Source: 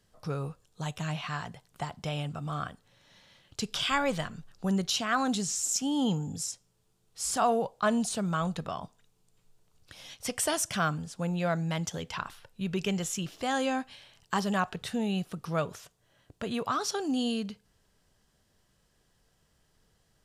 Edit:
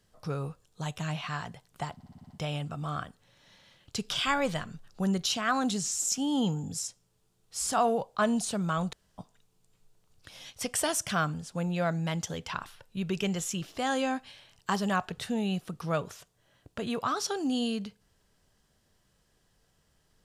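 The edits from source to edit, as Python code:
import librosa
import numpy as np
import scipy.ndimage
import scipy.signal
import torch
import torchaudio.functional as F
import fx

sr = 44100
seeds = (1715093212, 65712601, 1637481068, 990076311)

y = fx.edit(x, sr, fx.stutter(start_s=1.94, slice_s=0.06, count=7),
    fx.room_tone_fill(start_s=8.57, length_s=0.25), tone=tone)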